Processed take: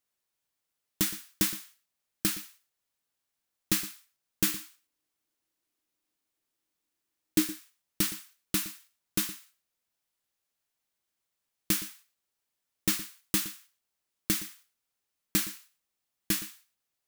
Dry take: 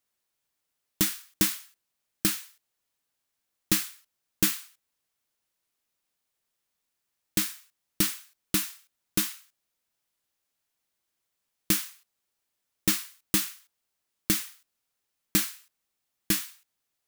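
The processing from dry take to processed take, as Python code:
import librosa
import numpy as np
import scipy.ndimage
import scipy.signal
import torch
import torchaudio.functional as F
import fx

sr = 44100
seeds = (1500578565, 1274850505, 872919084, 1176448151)

y = fx.peak_eq(x, sr, hz=310.0, db=12.5, octaves=0.41, at=(4.48, 7.48))
y = y + 10.0 ** (-15.5 / 20.0) * np.pad(y, (int(117 * sr / 1000.0), 0))[:len(y)]
y = y * 10.0 ** (-3.0 / 20.0)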